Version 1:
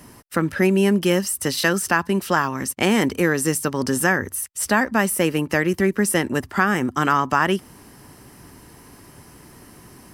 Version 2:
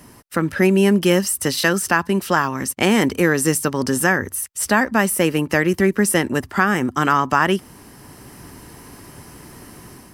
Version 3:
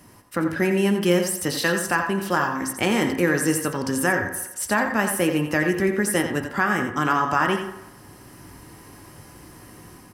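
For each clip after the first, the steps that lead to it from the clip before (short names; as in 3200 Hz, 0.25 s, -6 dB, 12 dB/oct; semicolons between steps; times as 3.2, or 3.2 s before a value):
AGC gain up to 5 dB
echo 87 ms -9 dB; reverb RT60 1.0 s, pre-delay 4 ms, DRR 5.5 dB; gain -5.5 dB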